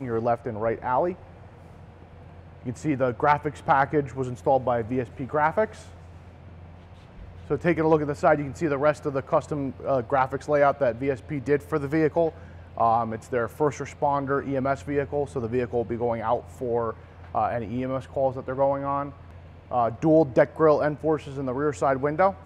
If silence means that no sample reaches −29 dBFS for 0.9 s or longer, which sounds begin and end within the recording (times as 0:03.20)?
0:02.66–0:05.65